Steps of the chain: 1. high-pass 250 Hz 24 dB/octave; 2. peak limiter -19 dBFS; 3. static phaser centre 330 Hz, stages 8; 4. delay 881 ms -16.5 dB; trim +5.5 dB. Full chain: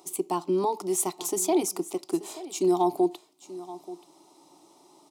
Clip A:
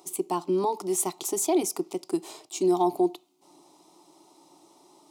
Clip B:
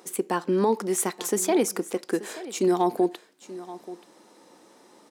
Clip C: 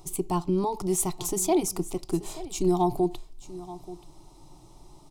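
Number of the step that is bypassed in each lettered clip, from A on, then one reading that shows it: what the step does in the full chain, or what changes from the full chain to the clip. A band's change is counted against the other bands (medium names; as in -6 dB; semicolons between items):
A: 4, momentary loudness spread change -9 LU; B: 3, 2 kHz band +9.5 dB; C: 1, 125 Hz band +10.5 dB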